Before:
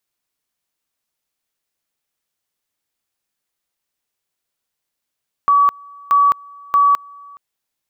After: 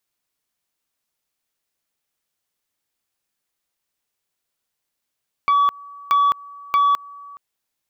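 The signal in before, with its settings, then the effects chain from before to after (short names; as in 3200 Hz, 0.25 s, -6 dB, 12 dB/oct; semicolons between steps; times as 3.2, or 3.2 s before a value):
two-level tone 1140 Hz -9 dBFS, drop 27 dB, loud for 0.21 s, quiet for 0.42 s, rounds 3
compressor 4:1, threshold -14 dBFS; core saturation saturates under 990 Hz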